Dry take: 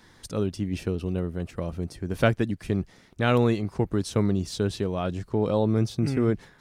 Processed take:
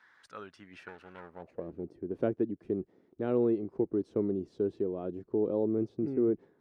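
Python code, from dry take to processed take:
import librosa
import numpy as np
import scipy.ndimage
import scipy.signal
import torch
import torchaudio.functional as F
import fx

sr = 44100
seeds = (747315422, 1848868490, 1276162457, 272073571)

y = fx.lower_of_two(x, sr, delay_ms=0.46, at=(0.88, 1.84))
y = fx.filter_sweep_bandpass(y, sr, from_hz=1500.0, to_hz=360.0, start_s=1.17, end_s=1.68, q=2.6)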